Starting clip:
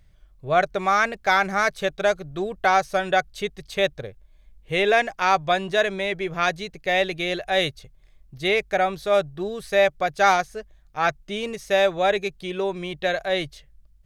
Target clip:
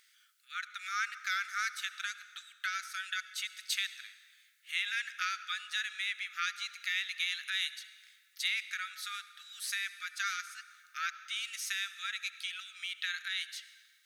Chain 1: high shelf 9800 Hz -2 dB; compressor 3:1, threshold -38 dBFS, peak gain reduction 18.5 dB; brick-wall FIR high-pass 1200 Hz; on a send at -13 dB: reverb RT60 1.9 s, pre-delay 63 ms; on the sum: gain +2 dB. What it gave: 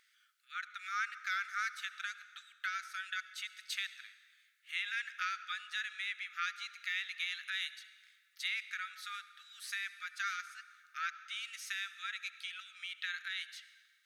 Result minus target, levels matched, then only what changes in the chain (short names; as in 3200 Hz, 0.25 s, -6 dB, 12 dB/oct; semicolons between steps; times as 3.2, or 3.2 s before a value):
8000 Hz band -4.5 dB
add after brick-wall FIR high-pass: high shelf 3200 Hz +10 dB